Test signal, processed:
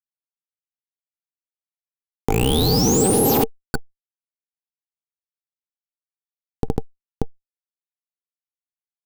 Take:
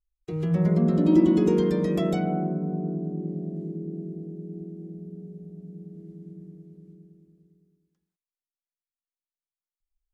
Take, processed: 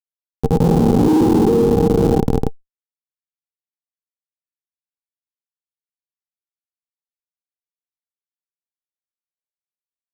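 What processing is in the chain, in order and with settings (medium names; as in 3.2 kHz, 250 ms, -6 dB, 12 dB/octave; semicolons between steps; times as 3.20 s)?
tone controls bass -7 dB, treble +8 dB; doubling 13 ms -7 dB; Schmitt trigger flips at -22 dBFS; small resonant body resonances 450/790 Hz, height 17 dB, ringing for 45 ms; peak limiter -19.5 dBFS; graphic EQ 125/250/2000 Hz +8/+11/-8 dB; level flattener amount 50%; trim +7 dB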